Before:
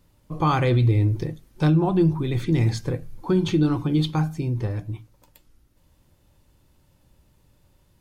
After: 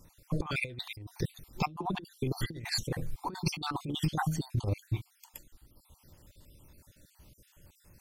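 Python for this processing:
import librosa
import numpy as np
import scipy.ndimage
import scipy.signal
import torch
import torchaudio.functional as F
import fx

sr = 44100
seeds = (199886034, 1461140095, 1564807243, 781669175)

y = fx.spec_dropout(x, sr, seeds[0], share_pct=51)
y = fx.high_shelf(y, sr, hz=3300.0, db=7.5)
y = fx.over_compress(y, sr, threshold_db=-28.0, ratio=-0.5)
y = F.gain(torch.from_numpy(y), -3.0).numpy()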